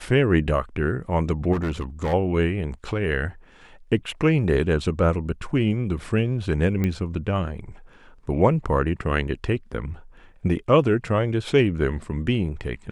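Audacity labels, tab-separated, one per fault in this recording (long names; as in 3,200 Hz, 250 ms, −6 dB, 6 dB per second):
1.520000	2.140000	clipping −21 dBFS
6.840000	6.840000	click −13 dBFS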